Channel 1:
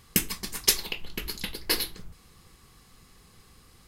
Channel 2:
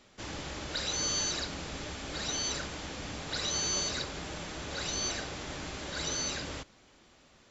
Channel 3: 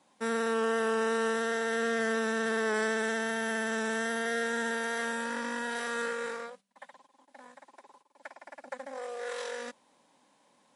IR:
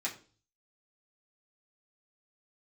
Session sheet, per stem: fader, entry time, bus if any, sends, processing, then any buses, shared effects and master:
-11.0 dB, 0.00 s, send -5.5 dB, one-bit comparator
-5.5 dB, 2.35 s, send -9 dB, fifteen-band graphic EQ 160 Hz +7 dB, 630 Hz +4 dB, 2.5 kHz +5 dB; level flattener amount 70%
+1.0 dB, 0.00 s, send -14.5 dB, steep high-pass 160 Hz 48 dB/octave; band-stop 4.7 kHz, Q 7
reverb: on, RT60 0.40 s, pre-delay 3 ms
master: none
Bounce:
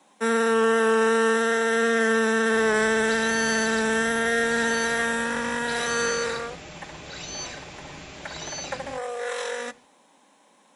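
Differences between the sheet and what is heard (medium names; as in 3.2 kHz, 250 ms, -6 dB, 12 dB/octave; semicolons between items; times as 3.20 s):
stem 1: muted; stem 2: missing level flattener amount 70%; stem 3 +1.0 dB -> +7.0 dB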